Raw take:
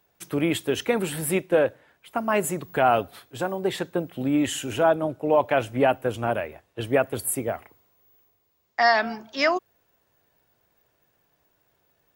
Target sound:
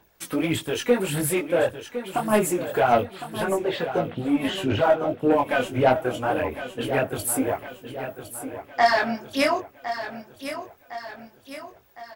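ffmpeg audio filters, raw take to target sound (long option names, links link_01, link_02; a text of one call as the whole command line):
ffmpeg -i in.wav -filter_complex "[0:a]asettb=1/sr,asplit=3[link_01][link_02][link_03];[link_01]atrim=end=3.034[link_04];[link_02]atrim=start=3.03:end=5.18,asetpts=PTS-STARTPTS,afade=type=in:duration=0.004:curve=qsin,afade=type=out:start_time=2.146:duration=0.004:curve=qsin,lowpass=frequency=4500:width=0.5412,lowpass=frequency=4500:width=1.3066[link_05];[link_03]atrim=start=5.176[link_06];[link_04][link_05]acrossfade=duration=0.004:curve1=hsin:curve2=qsin[link_07];[link_07][link_06]acrossfade=duration=0.004:curve1=qsin:curve2=hsin,asplit=2[link_08][link_09];[link_09]acompressor=threshold=-33dB:ratio=6,volume=1.5dB[link_10];[link_08][link_10]amix=inputs=2:normalize=0,aphaser=in_gain=1:out_gain=1:delay=4.1:decay=0.64:speed=1.7:type=sinusoidal,asoftclip=type=tanh:threshold=-7dB,flanger=delay=18:depth=5.8:speed=0.25,aecho=1:1:1059|2118|3177|4236|5295:0.282|0.141|0.0705|0.0352|0.0176" out.wav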